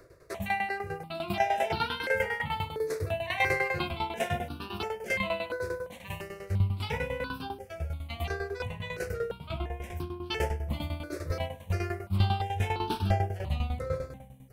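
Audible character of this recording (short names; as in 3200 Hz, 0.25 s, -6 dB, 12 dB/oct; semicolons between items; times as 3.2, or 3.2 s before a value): tremolo saw down 10 Hz, depth 80%; notches that jump at a steady rate 2.9 Hz 830–2000 Hz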